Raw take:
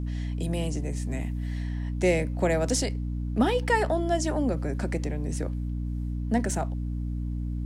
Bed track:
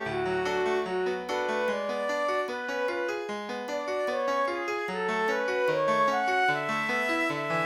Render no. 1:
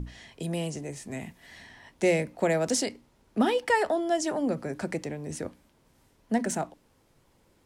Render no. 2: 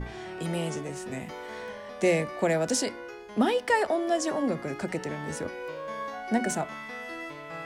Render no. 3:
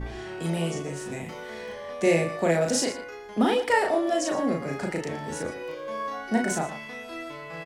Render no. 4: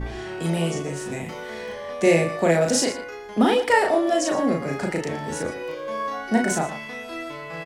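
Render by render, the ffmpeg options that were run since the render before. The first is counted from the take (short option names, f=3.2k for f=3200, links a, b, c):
-af "bandreject=f=60:t=h:w=6,bandreject=f=120:t=h:w=6,bandreject=f=180:t=h:w=6,bandreject=f=240:t=h:w=6,bandreject=f=300:t=h:w=6"
-filter_complex "[1:a]volume=-11dB[a];[0:a][a]amix=inputs=2:normalize=0"
-filter_complex "[0:a]asplit=2[a][b];[b]adelay=36,volume=-2.5dB[c];[a][c]amix=inputs=2:normalize=0,asplit=2[d][e];[e]adelay=116.6,volume=-13dB,highshelf=f=4k:g=-2.62[f];[d][f]amix=inputs=2:normalize=0"
-af "volume=4dB"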